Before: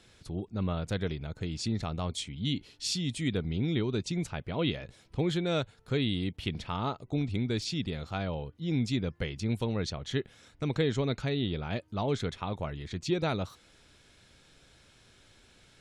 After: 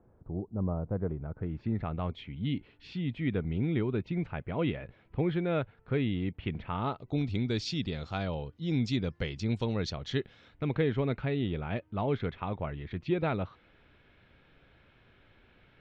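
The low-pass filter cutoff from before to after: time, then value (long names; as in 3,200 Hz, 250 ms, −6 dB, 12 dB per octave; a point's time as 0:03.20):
low-pass filter 24 dB per octave
0:00.89 1,000 Hz
0:01.98 2,500 Hz
0:06.69 2,500 Hz
0:07.30 6,000 Hz
0:10.00 6,000 Hz
0:10.79 2,800 Hz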